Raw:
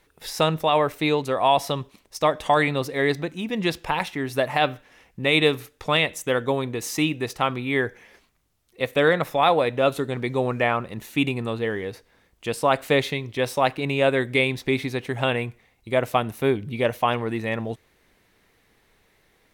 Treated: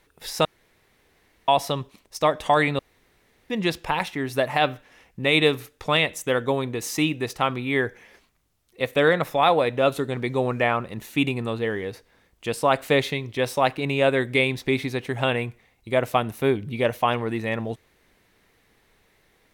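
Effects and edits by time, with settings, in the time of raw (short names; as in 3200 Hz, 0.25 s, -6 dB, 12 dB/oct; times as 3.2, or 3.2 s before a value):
0.45–1.48 room tone
2.79–3.5 room tone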